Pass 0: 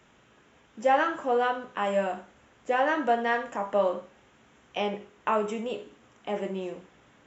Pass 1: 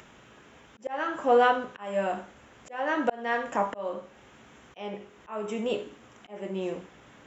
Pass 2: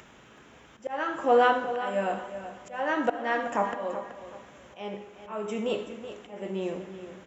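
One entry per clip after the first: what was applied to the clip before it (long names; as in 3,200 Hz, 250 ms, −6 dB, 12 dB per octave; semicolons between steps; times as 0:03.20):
volume swells 477 ms; upward compression, threshold −54 dBFS; level +5 dB
repeating echo 378 ms, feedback 29%, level −12 dB; on a send at −12.5 dB: convolution reverb RT60 1.3 s, pre-delay 65 ms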